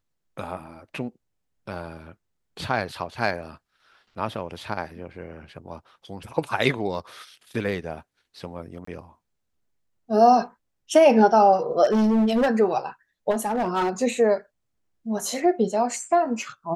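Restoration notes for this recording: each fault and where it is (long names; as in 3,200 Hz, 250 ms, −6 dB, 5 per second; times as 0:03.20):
0:08.85–0:08.87: drop-out 24 ms
0:11.84–0:12.49: clipping −17 dBFS
0:13.30–0:13.90: clipping −19.5 dBFS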